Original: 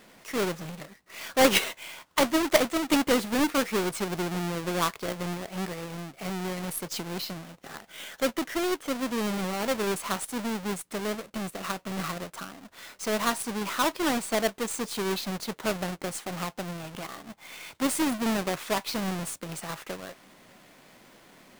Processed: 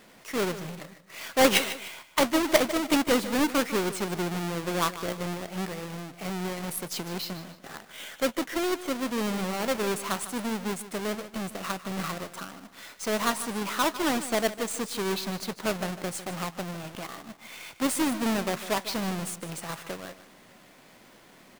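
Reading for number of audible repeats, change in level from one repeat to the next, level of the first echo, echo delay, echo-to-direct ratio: 2, −9.0 dB, −14.0 dB, 151 ms, −13.5 dB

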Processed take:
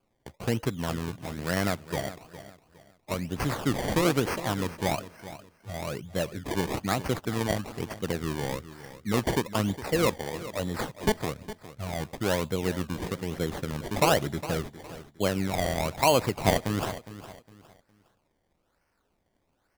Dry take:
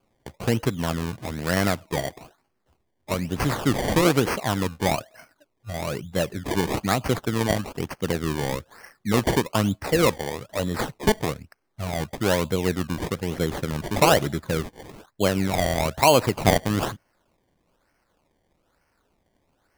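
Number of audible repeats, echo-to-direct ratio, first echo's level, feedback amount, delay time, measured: 2, −14.0 dB, −14.5 dB, 30%, 410 ms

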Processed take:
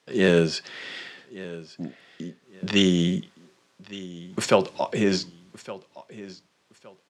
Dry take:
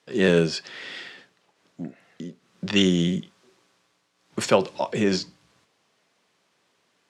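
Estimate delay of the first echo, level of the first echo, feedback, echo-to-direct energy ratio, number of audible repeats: 1,165 ms, −18.0 dB, 26%, −17.5 dB, 2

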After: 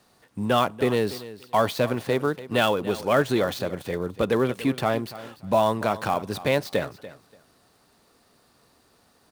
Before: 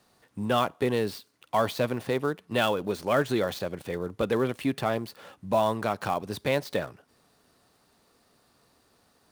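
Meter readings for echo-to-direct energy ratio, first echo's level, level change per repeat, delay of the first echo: −16.0 dB, −16.0 dB, −14.5 dB, 289 ms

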